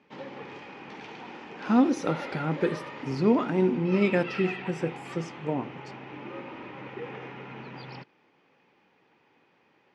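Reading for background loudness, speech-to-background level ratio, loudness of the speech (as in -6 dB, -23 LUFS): -40.0 LUFS, 12.5 dB, -27.5 LUFS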